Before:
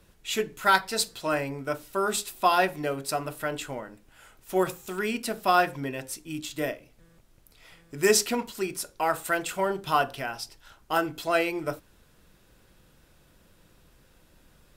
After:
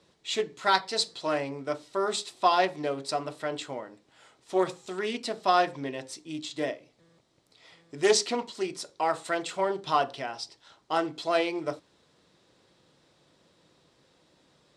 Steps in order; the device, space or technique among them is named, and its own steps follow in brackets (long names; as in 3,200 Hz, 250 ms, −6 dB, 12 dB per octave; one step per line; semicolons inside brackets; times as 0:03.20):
full-range speaker at full volume (highs frequency-modulated by the lows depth 0.18 ms; loudspeaker in its box 170–7,600 Hz, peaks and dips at 210 Hz −5 dB, 1,500 Hz −7 dB, 2,600 Hz −5 dB, 4,000 Hz +4 dB, 6,600 Hz −3 dB)